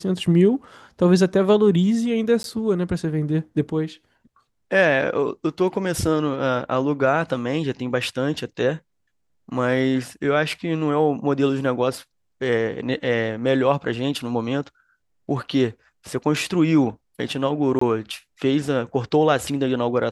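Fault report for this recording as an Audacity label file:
2.430000	2.440000	gap 12 ms
17.790000	17.810000	gap 24 ms

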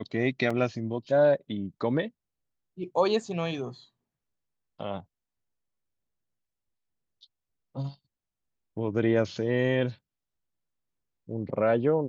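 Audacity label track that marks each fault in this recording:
0.500000	0.500000	gap 4.6 ms

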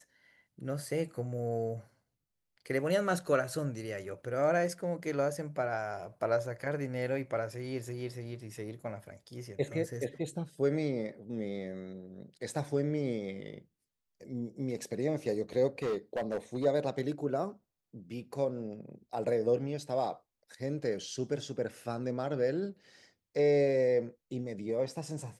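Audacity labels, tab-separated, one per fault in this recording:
15.830000	16.660000	clipped -28.5 dBFS

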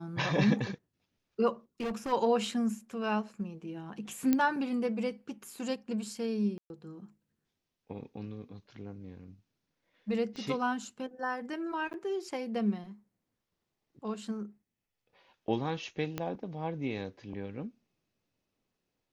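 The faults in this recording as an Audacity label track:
1.800000	2.130000	clipped -31 dBFS
4.330000	4.330000	pop -14 dBFS
6.580000	6.700000	gap 0.121 s
10.360000	10.360000	pop -31 dBFS
11.930000	11.940000	gap 9.5 ms
16.180000	16.180000	pop -19 dBFS

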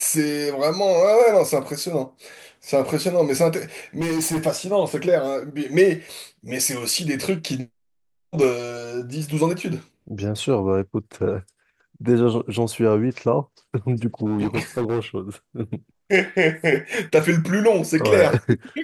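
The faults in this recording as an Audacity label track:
4.000000	4.470000	clipped -19 dBFS
14.260000	15.000000	clipped -17.5 dBFS

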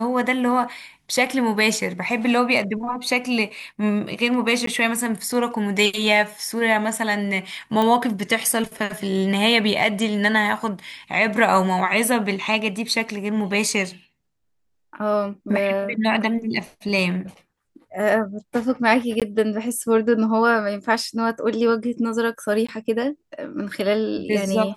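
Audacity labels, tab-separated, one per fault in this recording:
4.660000	4.670000	gap 13 ms
7.820000	7.820000	pop -10 dBFS
19.200000	19.220000	gap 17 ms
22.670000	22.680000	gap 15 ms

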